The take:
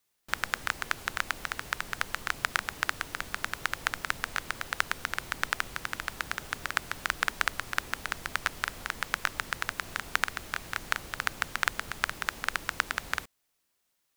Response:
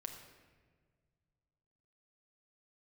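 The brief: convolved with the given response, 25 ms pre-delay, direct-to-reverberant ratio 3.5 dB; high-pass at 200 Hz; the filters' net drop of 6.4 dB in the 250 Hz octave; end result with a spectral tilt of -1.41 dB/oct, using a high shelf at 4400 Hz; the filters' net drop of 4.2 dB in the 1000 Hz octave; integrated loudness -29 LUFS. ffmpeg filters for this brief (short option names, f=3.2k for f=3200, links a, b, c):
-filter_complex "[0:a]highpass=200,equalizer=f=250:t=o:g=-6,equalizer=f=1k:t=o:g=-5.5,highshelf=f=4.4k:g=-3.5,asplit=2[a][b];[1:a]atrim=start_sample=2205,adelay=25[c];[b][c]afir=irnorm=-1:irlink=0,volume=-0.5dB[d];[a][d]amix=inputs=2:normalize=0,volume=4.5dB"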